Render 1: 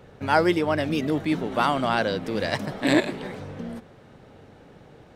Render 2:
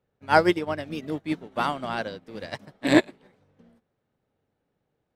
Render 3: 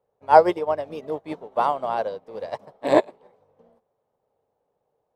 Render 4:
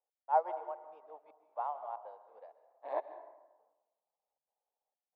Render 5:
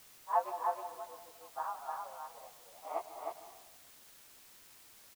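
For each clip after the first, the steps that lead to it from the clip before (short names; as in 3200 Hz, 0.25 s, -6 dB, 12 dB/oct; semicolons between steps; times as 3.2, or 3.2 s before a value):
upward expander 2.5:1, over -37 dBFS; gain +4 dB
band shelf 680 Hz +14 dB; gain -7 dB
ladder band-pass 920 Hz, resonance 45%; step gate "x..xxxxx.xxxx" 161 bpm -60 dB; plate-style reverb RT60 1.1 s, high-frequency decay 0.55×, pre-delay 0.115 s, DRR 12 dB; gain -8 dB
inharmonic rescaling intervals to 111%; echo 0.311 s -3.5 dB; requantised 10-bit, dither triangular; gain +1.5 dB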